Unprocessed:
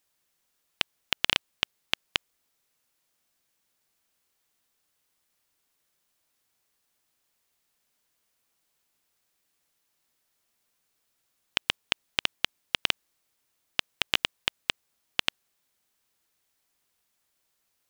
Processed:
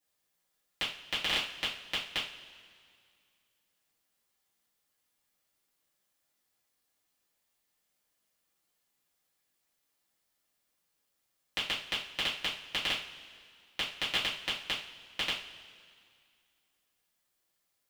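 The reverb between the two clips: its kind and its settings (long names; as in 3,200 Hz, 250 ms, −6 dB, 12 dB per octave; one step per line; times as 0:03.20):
coupled-rooms reverb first 0.38 s, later 2.2 s, from −18 dB, DRR −10 dB
level −13.5 dB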